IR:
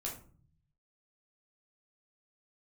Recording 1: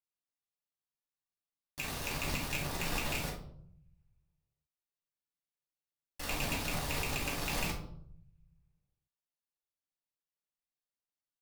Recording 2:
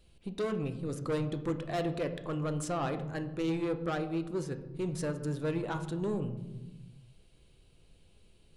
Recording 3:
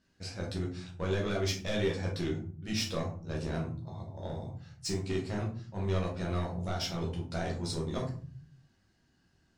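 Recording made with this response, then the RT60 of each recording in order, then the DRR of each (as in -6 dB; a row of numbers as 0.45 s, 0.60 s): 3; 0.70 s, 1.1 s, 0.45 s; -6.0 dB, 7.5 dB, -3.0 dB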